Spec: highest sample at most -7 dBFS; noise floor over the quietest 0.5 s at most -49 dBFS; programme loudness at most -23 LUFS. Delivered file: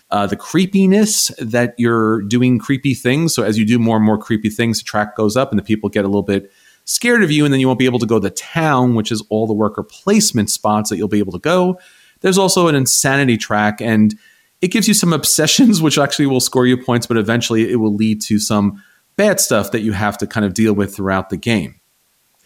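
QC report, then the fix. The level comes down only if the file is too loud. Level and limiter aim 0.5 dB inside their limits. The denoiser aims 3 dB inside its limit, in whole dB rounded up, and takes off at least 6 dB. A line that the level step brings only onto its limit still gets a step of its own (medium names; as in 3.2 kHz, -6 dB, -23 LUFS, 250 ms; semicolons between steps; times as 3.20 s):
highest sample -3.0 dBFS: fail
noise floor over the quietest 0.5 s -60 dBFS: pass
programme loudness -15.0 LUFS: fail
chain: trim -8.5 dB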